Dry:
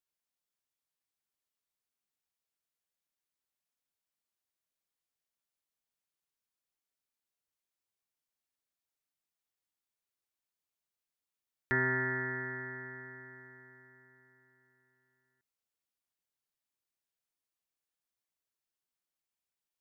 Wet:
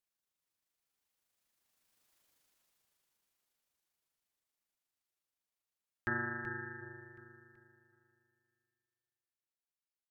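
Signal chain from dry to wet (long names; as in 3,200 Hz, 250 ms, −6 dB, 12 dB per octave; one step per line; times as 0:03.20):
source passing by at 0:04.27, 28 m/s, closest 21 metres
repeating echo 722 ms, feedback 42%, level −8 dB
time stretch by overlap-add 0.51×, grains 79 ms
level +16.5 dB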